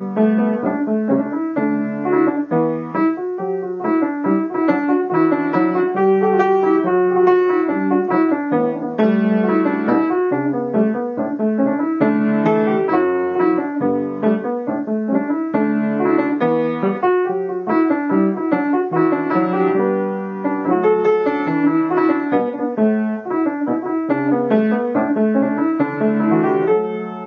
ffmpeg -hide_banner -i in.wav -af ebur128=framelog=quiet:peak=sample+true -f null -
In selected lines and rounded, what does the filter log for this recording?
Integrated loudness:
  I:         -17.7 LUFS
  Threshold: -27.6 LUFS
Loudness range:
  LRA:         2.9 LU
  Threshold: -37.6 LUFS
  LRA low:   -18.8 LUFS
  LRA high:  -15.9 LUFS
Sample peak:
  Peak:       -1.5 dBFS
True peak:
  Peak:       -1.5 dBFS